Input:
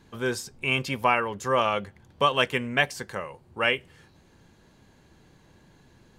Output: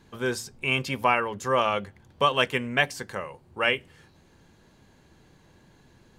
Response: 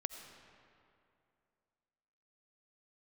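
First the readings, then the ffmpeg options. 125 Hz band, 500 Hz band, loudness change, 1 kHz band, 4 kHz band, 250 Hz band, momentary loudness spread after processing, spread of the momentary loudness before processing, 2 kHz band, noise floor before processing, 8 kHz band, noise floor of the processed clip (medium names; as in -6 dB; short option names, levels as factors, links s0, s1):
-0.5 dB, 0.0 dB, 0.0 dB, 0.0 dB, 0.0 dB, 0.0 dB, 12 LU, 12 LU, 0.0 dB, -58 dBFS, 0.0 dB, -59 dBFS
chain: -af "bandreject=f=56.42:t=h:w=4,bandreject=f=112.84:t=h:w=4,bandreject=f=169.26:t=h:w=4,bandreject=f=225.68:t=h:w=4,bandreject=f=282.1:t=h:w=4"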